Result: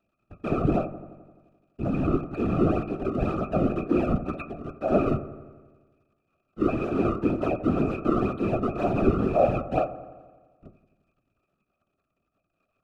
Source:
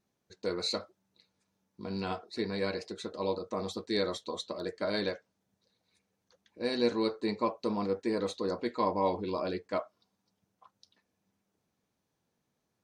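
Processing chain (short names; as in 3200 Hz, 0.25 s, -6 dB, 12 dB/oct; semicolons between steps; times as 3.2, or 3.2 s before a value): 4.3–4.88 pre-emphasis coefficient 0.8; low-pass opened by the level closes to 2800 Hz, open at -31 dBFS; high shelf 6600 Hz -11 dB; in parallel at -4.5 dB: fuzz box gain 42 dB, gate -52 dBFS; on the sum: decimation with a swept rate 31×, swing 160% 2 Hz; crackle 100/s -41 dBFS; octave resonator D#, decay 0.17 s; whisperiser; on a send: dark delay 86 ms, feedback 66%, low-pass 1600 Hz, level -14 dB; on the sum: gain +5.5 dB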